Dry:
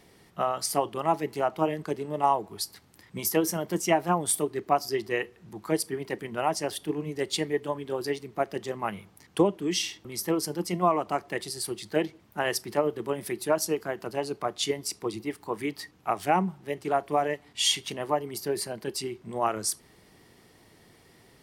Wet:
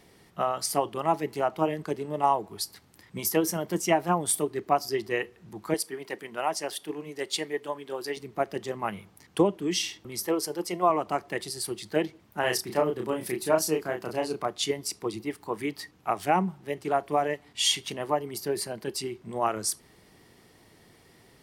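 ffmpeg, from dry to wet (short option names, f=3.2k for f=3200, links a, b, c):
-filter_complex "[0:a]asettb=1/sr,asplit=3[a][b][c];[a]atrim=end=5.744[d];[b]atrim=start=5.74:end=8.17,asetpts=PTS-STARTPTS,afade=t=in:d=0.004:c=qsin,afade=t=out:st=2.426:d=0.004:c=qsin,highpass=f=500:p=1[e];[c]atrim=start=8.166[f];[d][e]acrossfade=d=0.004:c1=hsin:c2=qsin[g];[g][f]acrossfade=d=0.004:c1=qsin:c2=hsin,asettb=1/sr,asplit=3[h][i][j];[h]atrim=end=10.264[k];[i]atrim=start=10.26:end=10.9,asetpts=PTS-STARTPTS,afade=t=in:d=0.004:c=qsin,afade=t=out:st=0.636:d=0.004:c=qsin,lowshelf=f=300:t=q:w=1.5:g=-7.5[l];[j]atrim=start=10.896[m];[k][l]acrossfade=d=0.004:c1=hsin:c2=qsin[n];[n][m]acrossfade=d=0.004:c1=qsin:c2=hsin,asettb=1/sr,asplit=3[o][p][q];[o]atrim=end=12.404[r];[p]atrim=start=12.4:end=14.46,asetpts=PTS-STARTPTS,afade=t=in:d=0.004:c=qsin,afade=t=out:st=2.056:d=0.004:c=qsin,asplit=2[s][t];[t]adelay=32,volume=-4dB[u];[s][u]amix=inputs=2:normalize=0,atrim=end_sample=90846[v];[q]atrim=start=14.456[w];[r][v]acrossfade=d=0.004:c1=hsin:c2=qsin[x];[x][w]acrossfade=d=0.004:c1=qsin:c2=hsin"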